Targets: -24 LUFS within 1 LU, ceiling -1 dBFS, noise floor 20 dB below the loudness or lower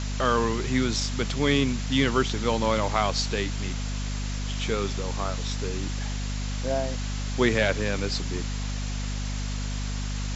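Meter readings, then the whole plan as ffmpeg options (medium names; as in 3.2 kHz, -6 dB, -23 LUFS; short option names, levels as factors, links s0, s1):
hum 50 Hz; highest harmonic 250 Hz; hum level -28 dBFS; noise floor -30 dBFS; noise floor target -48 dBFS; loudness -27.5 LUFS; peak level -8.0 dBFS; loudness target -24.0 LUFS
-> -af "bandreject=f=50:t=h:w=4,bandreject=f=100:t=h:w=4,bandreject=f=150:t=h:w=4,bandreject=f=200:t=h:w=4,bandreject=f=250:t=h:w=4"
-af "afftdn=nr=18:nf=-30"
-af "volume=1.5"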